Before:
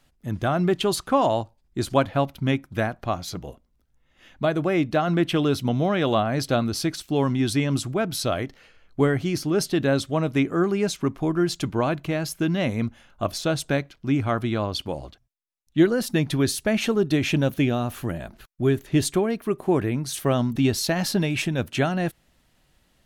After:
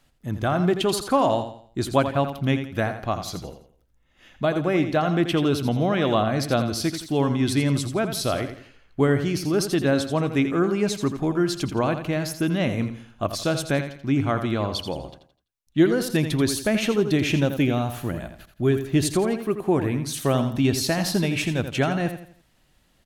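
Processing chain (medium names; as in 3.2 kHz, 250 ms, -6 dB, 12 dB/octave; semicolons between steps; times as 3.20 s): feedback delay 84 ms, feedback 36%, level -9.5 dB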